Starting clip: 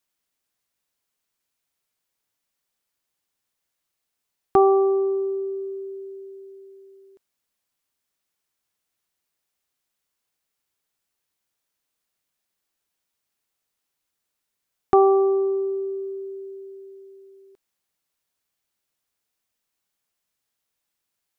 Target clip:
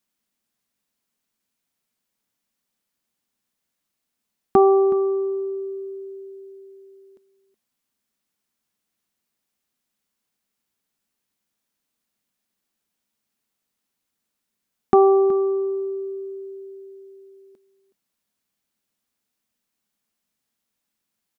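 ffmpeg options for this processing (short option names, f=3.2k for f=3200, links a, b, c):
-af "equalizer=f=220:w=2.1:g=11.5,aecho=1:1:371:0.158"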